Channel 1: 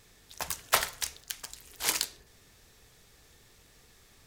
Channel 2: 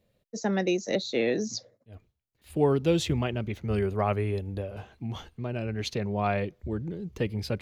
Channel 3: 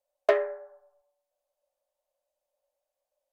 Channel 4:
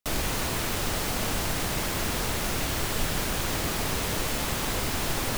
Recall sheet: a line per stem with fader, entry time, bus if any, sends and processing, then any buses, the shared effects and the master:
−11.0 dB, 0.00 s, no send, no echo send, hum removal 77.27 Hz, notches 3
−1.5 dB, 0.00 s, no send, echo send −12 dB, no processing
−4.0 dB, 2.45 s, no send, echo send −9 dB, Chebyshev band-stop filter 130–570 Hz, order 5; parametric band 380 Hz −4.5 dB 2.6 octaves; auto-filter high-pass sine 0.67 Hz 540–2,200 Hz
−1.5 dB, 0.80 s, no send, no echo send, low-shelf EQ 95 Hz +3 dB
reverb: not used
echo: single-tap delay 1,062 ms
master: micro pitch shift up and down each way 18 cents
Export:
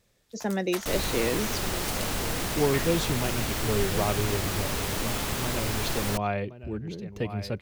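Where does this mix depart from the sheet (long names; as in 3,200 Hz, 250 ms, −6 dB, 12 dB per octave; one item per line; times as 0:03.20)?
stem 4: missing low-shelf EQ 95 Hz +3 dB
master: missing micro pitch shift up and down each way 18 cents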